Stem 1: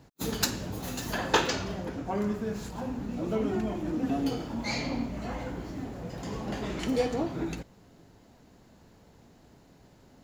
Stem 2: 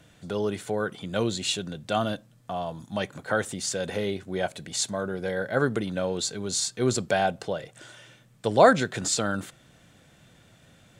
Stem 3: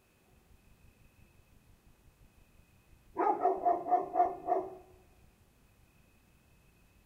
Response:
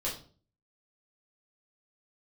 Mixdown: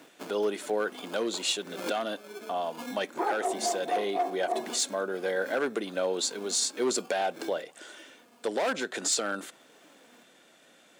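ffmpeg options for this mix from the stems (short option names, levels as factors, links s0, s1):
-filter_complex "[0:a]acompressor=threshold=0.02:ratio=4,aphaser=in_gain=1:out_gain=1:delay=4.3:decay=0.68:speed=0.54:type=sinusoidal,acrusher=samples=23:mix=1:aa=0.000001,volume=0.708[s0];[1:a]volume=1.06,asplit=2[s1][s2];[2:a]volume=1.33[s3];[s2]apad=whole_len=451153[s4];[s0][s4]sidechaincompress=threshold=0.0224:ratio=8:attack=10:release=260[s5];[s5][s1][s3]amix=inputs=3:normalize=0,asoftclip=type=hard:threshold=0.119,highpass=f=270:w=0.5412,highpass=f=270:w=1.3066,alimiter=limit=0.119:level=0:latency=1:release=351"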